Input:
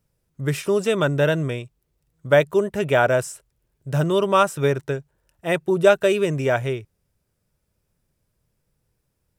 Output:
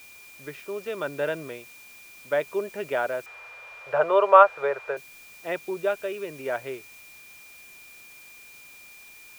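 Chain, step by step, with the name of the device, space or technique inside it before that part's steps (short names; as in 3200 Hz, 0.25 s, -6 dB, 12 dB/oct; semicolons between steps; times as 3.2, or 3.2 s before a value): shortwave radio (BPF 330–2900 Hz; tremolo 0.74 Hz, depth 45%; whine 2400 Hz -41 dBFS; white noise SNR 19 dB); 3.26–4.97 EQ curve 120 Hz 0 dB, 240 Hz -18 dB, 500 Hz +13 dB, 1300 Hz +13 dB, 13000 Hz -18 dB; gain -6.5 dB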